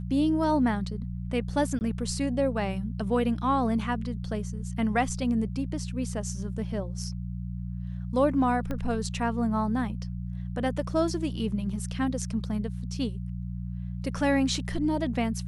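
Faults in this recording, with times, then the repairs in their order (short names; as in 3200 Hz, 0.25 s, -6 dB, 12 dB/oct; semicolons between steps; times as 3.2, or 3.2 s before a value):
hum 60 Hz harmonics 3 -34 dBFS
1.79–1.81 gap 19 ms
8.71 pop -20 dBFS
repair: de-click; de-hum 60 Hz, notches 3; interpolate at 1.79, 19 ms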